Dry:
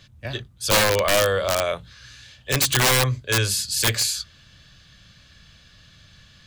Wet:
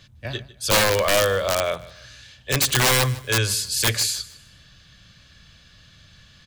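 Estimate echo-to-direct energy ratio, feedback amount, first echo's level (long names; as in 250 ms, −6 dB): −18.5 dB, 30%, −19.0 dB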